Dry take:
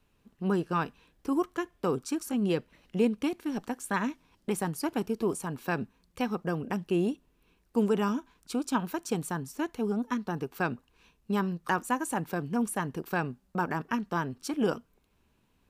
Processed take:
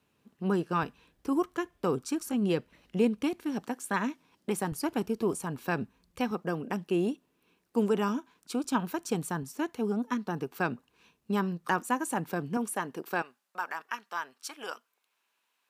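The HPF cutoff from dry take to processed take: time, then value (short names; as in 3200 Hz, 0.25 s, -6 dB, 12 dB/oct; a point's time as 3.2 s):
120 Hz
from 0.83 s 48 Hz
from 3.65 s 150 Hz
from 4.72 s 41 Hz
from 6.31 s 170 Hz
from 8.64 s 56 Hz
from 9.43 s 120 Hz
from 12.57 s 280 Hz
from 13.22 s 1000 Hz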